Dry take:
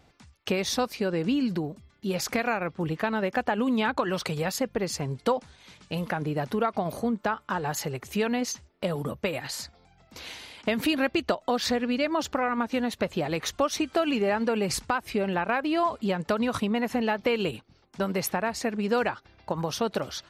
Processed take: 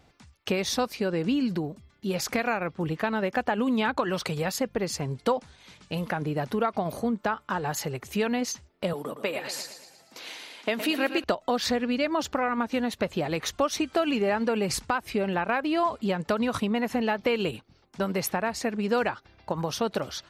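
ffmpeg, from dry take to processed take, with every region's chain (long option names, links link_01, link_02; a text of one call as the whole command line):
ffmpeg -i in.wav -filter_complex "[0:a]asettb=1/sr,asplit=3[link_01][link_02][link_03];[link_01]atrim=end=8.934[link_04];[link_02]atrim=start=8.93:end=11.24,asetpts=PTS-STARTPTS,afade=type=in:duration=0.004:curve=qsin,afade=type=out:start_time=2.306:duration=0.004:curve=qsin,highpass=280,aecho=1:1:115|230|345|460|575|690:0.316|0.164|0.0855|0.0445|0.0231|0.012,atrim=end_sample=101871[link_05];[link_03]atrim=start=11.236[link_06];[link_04][link_05]acrossfade=duration=0.004:curve1=hsin:curve2=qsin[link_07];[link_07][link_06]acrossfade=duration=0.004:curve1=qsin:curve2=hsin" out.wav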